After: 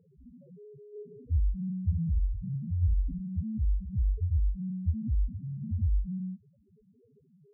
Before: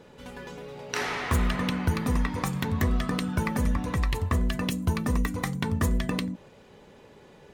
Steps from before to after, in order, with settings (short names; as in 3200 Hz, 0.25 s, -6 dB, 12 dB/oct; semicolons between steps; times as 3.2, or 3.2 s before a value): median filter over 25 samples; low shelf 410 Hz +7.5 dB; 1.84–3.32 flutter echo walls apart 11.4 m, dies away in 0.99 s; loudest bins only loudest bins 1; gain -3 dB